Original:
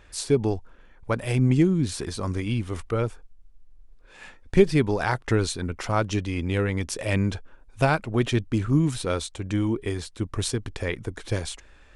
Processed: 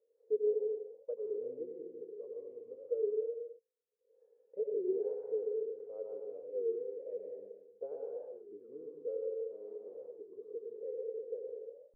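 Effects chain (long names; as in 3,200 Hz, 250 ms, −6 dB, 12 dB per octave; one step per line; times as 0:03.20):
0:07.99–0:08.49: downward compressor 3 to 1, threshold −33 dBFS, peak gain reduction 12 dB
0:09.33–0:09.97: comparator with hysteresis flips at −26.5 dBFS
flat-topped band-pass 470 Hz, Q 6.2
convolution reverb, pre-delay 84 ms, DRR −1.5 dB
wow of a warped record 33 1/3 rpm, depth 160 cents
level −5 dB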